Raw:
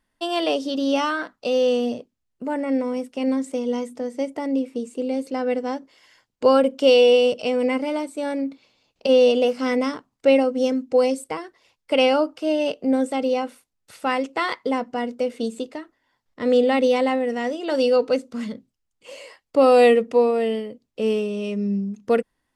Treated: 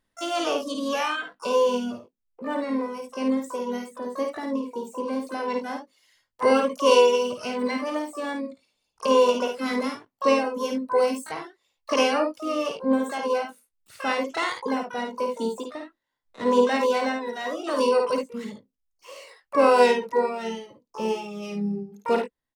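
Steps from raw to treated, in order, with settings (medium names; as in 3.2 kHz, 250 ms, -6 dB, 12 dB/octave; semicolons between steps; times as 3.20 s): reverb removal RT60 1.5 s; harmony voices -3 st -16 dB, +12 st -7 dB; early reflections 53 ms -5 dB, 73 ms -11 dB; trim -4 dB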